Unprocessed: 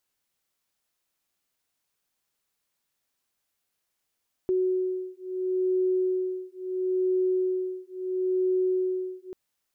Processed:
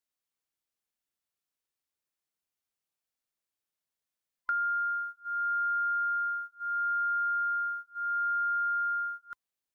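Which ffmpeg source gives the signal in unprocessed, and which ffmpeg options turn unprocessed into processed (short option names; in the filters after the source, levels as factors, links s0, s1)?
-f lavfi -i "aevalsrc='0.0447*(sin(2*PI*370*t)+sin(2*PI*370.74*t))':d=4.84:s=44100"
-af "afftfilt=real='real(if(lt(b,960),b+48*(1-2*mod(floor(b/48),2)),b),0)':imag='imag(if(lt(b,960),b+48*(1-2*mod(floor(b/48),2)),b),0)':win_size=2048:overlap=0.75,agate=range=0.282:threshold=0.0112:ratio=16:detection=peak,acompressor=threshold=0.0398:ratio=6"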